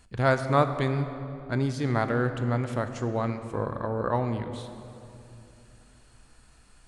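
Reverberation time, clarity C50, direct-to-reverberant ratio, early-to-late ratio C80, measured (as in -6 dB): 2.8 s, 9.0 dB, 8.0 dB, 10.0 dB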